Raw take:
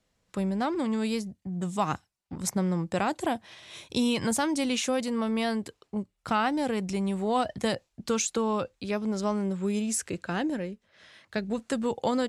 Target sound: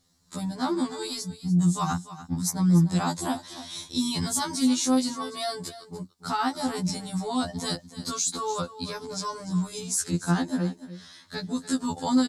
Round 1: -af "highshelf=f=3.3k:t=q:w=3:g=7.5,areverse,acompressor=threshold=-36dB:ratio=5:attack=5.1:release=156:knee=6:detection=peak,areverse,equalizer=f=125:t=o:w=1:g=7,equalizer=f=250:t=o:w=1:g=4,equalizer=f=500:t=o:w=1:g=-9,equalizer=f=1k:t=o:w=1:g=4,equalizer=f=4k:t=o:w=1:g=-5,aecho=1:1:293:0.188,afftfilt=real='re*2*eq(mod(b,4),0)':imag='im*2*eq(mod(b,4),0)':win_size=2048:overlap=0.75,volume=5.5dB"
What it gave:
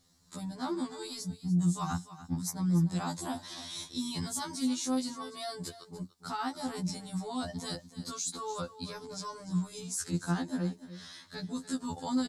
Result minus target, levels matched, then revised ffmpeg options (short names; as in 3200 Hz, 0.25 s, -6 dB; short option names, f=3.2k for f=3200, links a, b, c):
compressor: peak gain reduction +9 dB
-af "highshelf=f=3.3k:t=q:w=3:g=7.5,areverse,acompressor=threshold=-25dB:ratio=5:attack=5.1:release=156:knee=6:detection=peak,areverse,equalizer=f=125:t=o:w=1:g=7,equalizer=f=250:t=o:w=1:g=4,equalizer=f=500:t=o:w=1:g=-9,equalizer=f=1k:t=o:w=1:g=4,equalizer=f=4k:t=o:w=1:g=-5,aecho=1:1:293:0.188,afftfilt=real='re*2*eq(mod(b,4),0)':imag='im*2*eq(mod(b,4),0)':win_size=2048:overlap=0.75,volume=5.5dB"